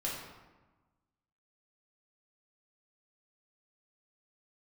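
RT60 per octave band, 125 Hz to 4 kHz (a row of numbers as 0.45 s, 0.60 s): 1.5 s, 1.5 s, 1.2 s, 1.3 s, 1.0 s, 0.75 s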